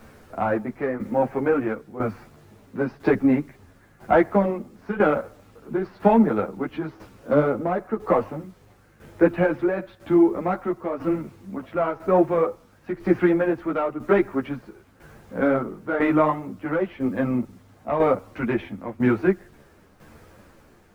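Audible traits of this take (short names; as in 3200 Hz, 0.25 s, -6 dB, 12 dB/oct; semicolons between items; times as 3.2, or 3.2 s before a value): a quantiser's noise floor 10-bit, dither none; tremolo saw down 1 Hz, depth 70%; a shimmering, thickened sound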